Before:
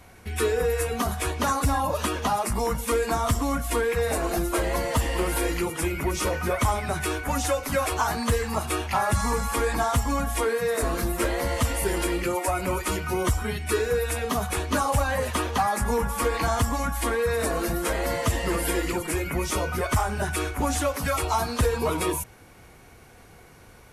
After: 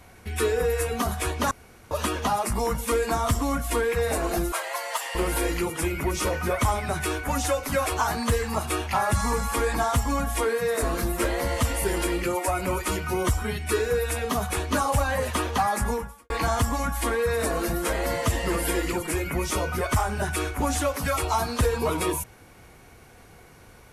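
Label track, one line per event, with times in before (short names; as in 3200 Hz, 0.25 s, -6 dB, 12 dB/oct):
1.510000	1.910000	room tone
4.520000	5.150000	HPF 690 Hz 24 dB/oct
15.870000	16.300000	fade out quadratic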